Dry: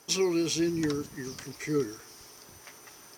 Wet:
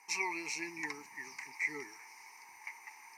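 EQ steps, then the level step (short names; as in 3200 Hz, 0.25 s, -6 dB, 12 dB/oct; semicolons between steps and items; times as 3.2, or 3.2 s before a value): double band-pass 1400 Hz, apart 1.3 oct; tilt +2.5 dB/oct; fixed phaser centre 1400 Hz, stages 4; +12.0 dB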